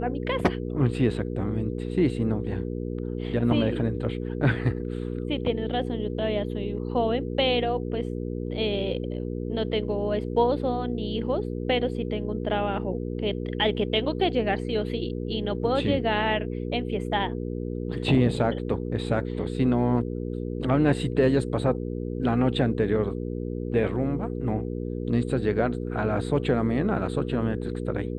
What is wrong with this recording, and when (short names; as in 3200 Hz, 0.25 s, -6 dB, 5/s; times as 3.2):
hum 60 Hz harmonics 8 -31 dBFS